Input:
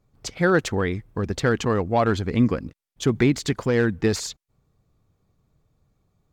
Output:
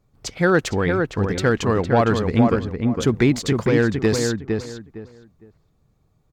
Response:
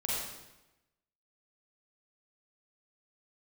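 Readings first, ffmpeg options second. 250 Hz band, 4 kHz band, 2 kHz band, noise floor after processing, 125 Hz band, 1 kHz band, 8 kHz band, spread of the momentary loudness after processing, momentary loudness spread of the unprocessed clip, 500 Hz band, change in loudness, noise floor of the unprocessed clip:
+3.5 dB, +2.5 dB, +3.0 dB, -63 dBFS, +3.5 dB, +3.5 dB, +2.0 dB, 10 LU, 9 LU, +3.5 dB, +3.0 dB, -77 dBFS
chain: -filter_complex "[0:a]asplit=2[s0][s1];[s1]adelay=459,lowpass=f=2000:p=1,volume=0.631,asplit=2[s2][s3];[s3]adelay=459,lowpass=f=2000:p=1,volume=0.24,asplit=2[s4][s5];[s5]adelay=459,lowpass=f=2000:p=1,volume=0.24[s6];[s0][s2][s4][s6]amix=inputs=4:normalize=0,volume=1.26"

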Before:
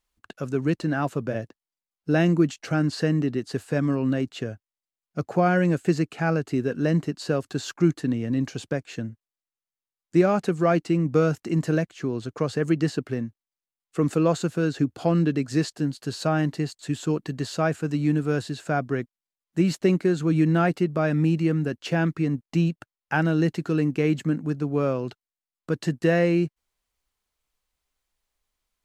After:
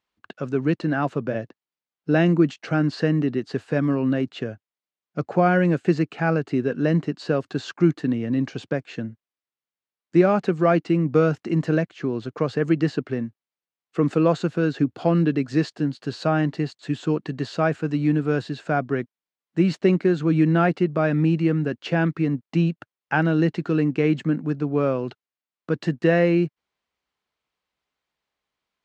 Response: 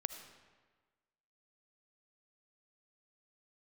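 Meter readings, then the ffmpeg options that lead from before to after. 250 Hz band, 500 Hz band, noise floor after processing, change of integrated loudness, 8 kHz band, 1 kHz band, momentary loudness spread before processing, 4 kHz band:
+2.0 dB, +2.5 dB, under -85 dBFS, +2.0 dB, no reading, +2.5 dB, 10 LU, -0.5 dB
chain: -af "highpass=120,lowpass=3900,volume=1.33"

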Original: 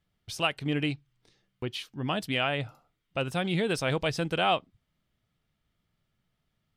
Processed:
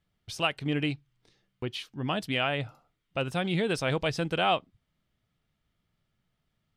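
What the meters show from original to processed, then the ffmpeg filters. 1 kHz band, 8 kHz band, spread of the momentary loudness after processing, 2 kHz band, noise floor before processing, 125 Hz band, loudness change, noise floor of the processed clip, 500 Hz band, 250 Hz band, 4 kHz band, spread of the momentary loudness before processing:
0.0 dB, -2.0 dB, 10 LU, 0.0 dB, -79 dBFS, 0.0 dB, 0.0 dB, -79 dBFS, 0.0 dB, 0.0 dB, -0.5 dB, 10 LU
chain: -af "highshelf=f=10000:g=-6"

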